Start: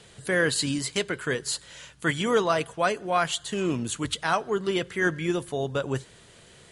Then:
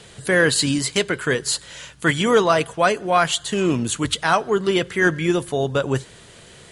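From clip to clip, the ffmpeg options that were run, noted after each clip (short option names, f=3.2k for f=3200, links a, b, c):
-af "acontrast=55,volume=1dB"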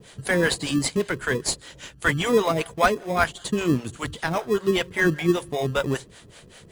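-filter_complex "[0:a]acrossover=split=500[a][b];[a]aeval=exprs='val(0)*(1-1/2+1/2*cos(2*PI*5.1*n/s))':c=same[c];[b]aeval=exprs='val(0)*(1-1/2-1/2*cos(2*PI*5.1*n/s))':c=same[d];[c][d]amix=inputs=2:normalize=0,asplit=2[e][f];[f]acrusher=samples=30:mix=1:aa=0.000001,volume=-9dB[g];[e][g]amix=inputs=2:normalize=0"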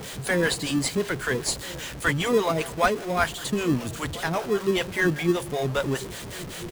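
-filter_complex "[0:a]aeval=exprs='val(0)+0.5*0.0335*sgn(val(0))':c=same,asplit=2[a][b];[b]adelay=1341,volume=-18dB,highshelf=f=4k:g=-30.2[c];[a][c]amix=inputs=2:normalize=0,volume=-3dB"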